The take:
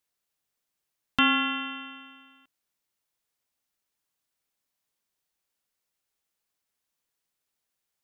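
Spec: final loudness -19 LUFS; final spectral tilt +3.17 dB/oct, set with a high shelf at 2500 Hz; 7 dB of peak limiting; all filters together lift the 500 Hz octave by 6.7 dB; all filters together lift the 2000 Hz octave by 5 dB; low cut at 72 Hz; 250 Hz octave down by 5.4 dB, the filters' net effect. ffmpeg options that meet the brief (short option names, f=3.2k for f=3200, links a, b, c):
-af "highpass=72,equalizer=f=250:t=o:g=-7.5,equalizer=f=500:t=o:g=8,equalizer=f=2k:t=o:g=3,highshelf=f=2.5k:g=6,volume=6.5dB,alimiter=limit=-6.5dB:level=0:latency=1"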